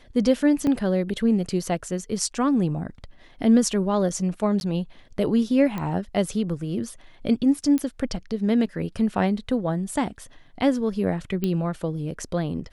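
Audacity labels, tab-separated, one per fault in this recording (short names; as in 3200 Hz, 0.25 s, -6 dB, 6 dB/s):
0.670000	0.670000	gap 3 ms
4.600000	4.610000	gap 11 ms
5.780000	5.780000	pop -17 dBFS
7.780000	7.780000	pop -14 dBFS
11.440000	11.440000	pop -13 dBFS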